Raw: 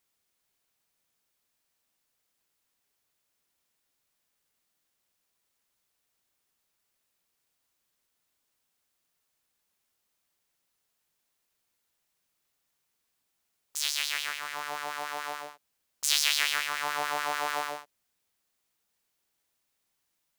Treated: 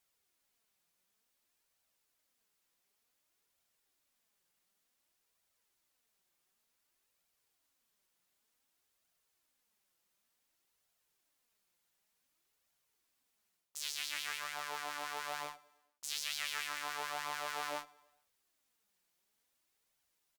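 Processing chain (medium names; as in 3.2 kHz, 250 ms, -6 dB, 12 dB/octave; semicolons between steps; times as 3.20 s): hum notches 50/100/150 Hz; reverse; compression 5:1, threshold -37 dBFS, peak gain reduction 17 dB; reverse; feedback delay 106 ms, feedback 55%, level -20 dB; Chebyshev shaper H 4 -25 dB, 6 -37 dB, 7 -26 dB, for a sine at -21.5 dBFS; flange 0.55 Hz, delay 1.2 ms, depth 4.8 ms, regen +46%; trim +6 dB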